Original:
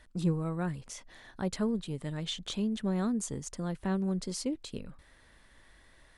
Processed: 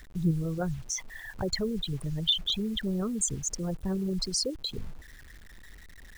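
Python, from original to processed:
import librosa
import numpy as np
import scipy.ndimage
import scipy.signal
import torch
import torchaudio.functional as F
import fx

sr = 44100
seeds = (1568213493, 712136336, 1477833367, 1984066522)

p1 = fx.envelope_sharpen(x, sr, power=3.0)
p2 = fx.peak_eq(p1, sr, hz=270.0, db=-15.0, octaves=1.7)
p3 = fx.level_steps(p2, sr, step_db=9)
p4 = p2 + (p3 * librosa.db_to_amplitude(-1.5))
p5 = fx.quant_dither(p4, sr, seeds[0], bits=10, dither='none')
y = p5 * librosa.db_to_amplitude(7.5)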